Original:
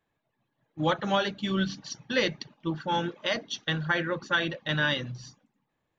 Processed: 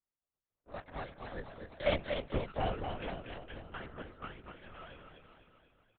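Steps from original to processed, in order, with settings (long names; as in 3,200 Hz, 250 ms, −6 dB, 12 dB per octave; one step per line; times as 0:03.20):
lower of the sound and its delayed copy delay 2.1 ms
source passing by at 0:02.16, 49 m/s, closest 6.9 metres
high-pass filter 180 Hz
high-shelf EQ 2,500 Hz −10.5 dB
repeating echo 245 ms, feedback 56%, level −6 dB
linear-prediction vocoder at 8 kHz whisper
level +6 dB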